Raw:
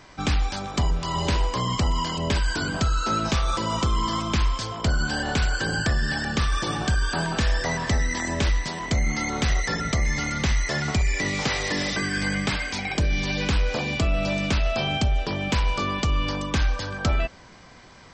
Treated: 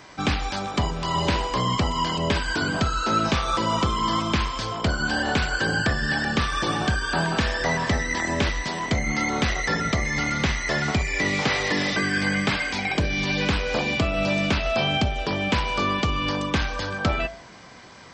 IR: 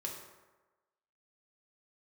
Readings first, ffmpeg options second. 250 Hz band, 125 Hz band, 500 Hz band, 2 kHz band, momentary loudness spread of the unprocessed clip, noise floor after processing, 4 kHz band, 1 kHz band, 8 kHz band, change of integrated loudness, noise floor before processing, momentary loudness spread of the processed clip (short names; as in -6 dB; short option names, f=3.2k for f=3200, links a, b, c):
+2.0 dB, -1.5 dB, +3.0 dB, +3.5 dB, 2 LU, -44 dBFS, +2.0 dB, +3.5 dB, -1.5 dB, +1.0 dB, -48 dBFS, 3 LU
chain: -filter_complex "[0:a]highpass=f=130:p=1,acrossover=split=4500[a][b];[b]acompressor=threshold=-43dB:ratio=4:attack=1:release=60[c];[a][c]amix=inputs=2:normalize=0,flanger=delay=9.3:depth=1.8:regen=-87:speed=0.34:shape=triangular,volume=8dB"